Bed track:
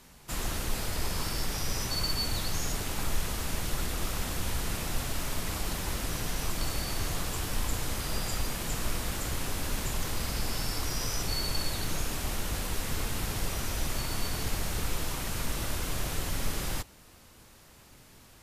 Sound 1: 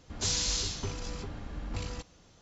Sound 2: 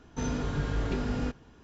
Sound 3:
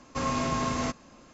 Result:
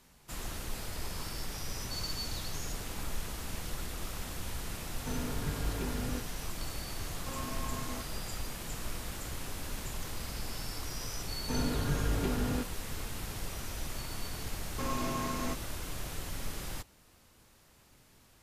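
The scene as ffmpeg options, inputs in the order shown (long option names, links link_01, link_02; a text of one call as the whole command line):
ffmpeg -i bed.wav -i cue0.wav -i cue1.wav -i cue2.wav -filter_complex "[2:a]asplit=2[link_01][link_02];[3:a]asplit=2[link_03][link_04];[0:a]volume=-7dB[link_05];[1:a]acompressor=threshold=-36dB:ratio=6:attack=3.2:release=140:knee=1:detection=peak[link_06];[link_04]equalizer=frequency=350:width_type=o:width=0.39:gain=5.5[link_07];[link_06]atrim=end=2.41,asetpts=PTS-STARTPTS,volume=-8.5dB,afade=type=in:duration=0.004:curve=hsin,afade=type=out:start_time=2.406:duration=0.004:curve=hsin,adelay=1730[link_08];[link_01]atrim=end=1.63,asetpts=PTS-STARTPTS,volume=-6dB,afade=type=in:duration=0.004:curve=hsin,afade=type=out:start_time=1.626:duration=0.004:curve=hsin,adelay=215649S[link_09];[link_03]atrim=end=1.33,asetpts=PTS-STARTPTS,volume=-13dB,afade=type=in:duration=0.004:curve=hsin,afade=type=out:start_time=1.326:duration=0.004:curve=hsin,adelay=7110[link_10];[link_02]atrim=end=1.63,asetpts=PTS-STARTPTS,volume=-1.5dB,afade=type=in:duration=0.004:curve=hsin,afade=type=out:start_time=1.626:duration=0.004:curve=hsin,adelay=11320[link_11];[link_07]atrim=end=1.33,asetpts=PTS-STARTPTS,volume=-7.5dB,afade=type=in:duration=0.004:curve=hsin,afade=type=out:start_time=1.326:duration=0.004:curve=hsin,adelay=14630[link_12];[link_05][link_08][link_09][link_10][link_11][link_12]amix=inputs=6:normalize=0" out.wav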